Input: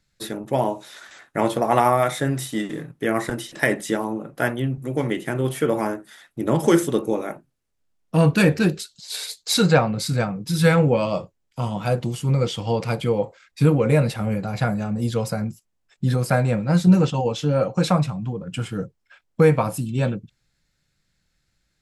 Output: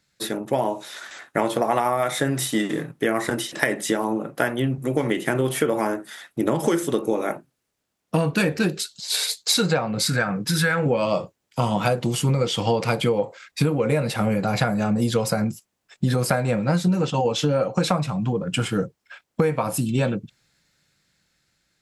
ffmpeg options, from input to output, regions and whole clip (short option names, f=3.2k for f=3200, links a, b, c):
-filter_complex "[0:a]asettb=1/sr,asplit=3[a][b][c];[a]atrim=end=10.074[d];[b]atrim=start=10.07:end=10.86,asetpts=PTS-STARTPTS,afade=t=in:d=0.004:c=qsin,afade=t=out:st=0.786:d=0.004:c=qsin,equalizer=f=1.6k:w=2.4:g=11.5,acompressor=threshold=-23dB:ratio=2:attack=3.2:release=140:knee=1:detection=peak[e];[c]atrim=start=10.856[f];[d][e]acrossfade=d=0.004:c1=hsin:c2=qsin[g];[g][f]acrossfade=d=0.004:c1=qsin:c2=hsin,dynaudnorm=f=380:g=7:m=11.5dB,highpass=f=200:p=1,acompressor=threshold=-21dB:ratio=12,volume=4dB"